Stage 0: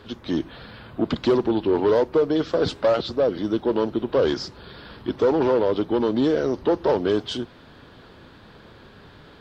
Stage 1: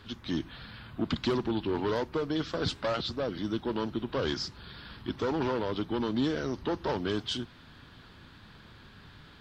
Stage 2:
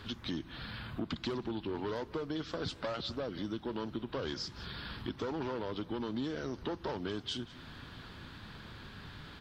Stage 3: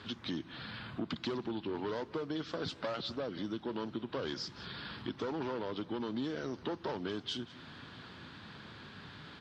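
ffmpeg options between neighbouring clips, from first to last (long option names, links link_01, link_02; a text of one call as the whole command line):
ffmpeg -i in.wav -af "equalizer=frequency=500:width_type=o:width=1.6:gain=-11.5,volume=-2dB" out.wav
ffmpeg -i in.wav -af "aecho=1:1:183:0.0668,acompressor=threshold=-41dB:ratio=3,volume=3.5dB" out.wav
ffmpeg -i in.wav -af "highpass=120,lowpass=6900" out.wav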